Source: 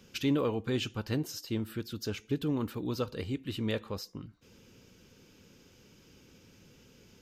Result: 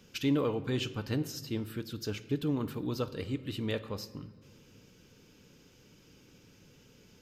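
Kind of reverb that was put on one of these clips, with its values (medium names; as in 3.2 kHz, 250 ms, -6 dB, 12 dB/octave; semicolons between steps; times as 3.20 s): simulated room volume 1800 m³, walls mixed, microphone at 0.42 m; trim -1 dB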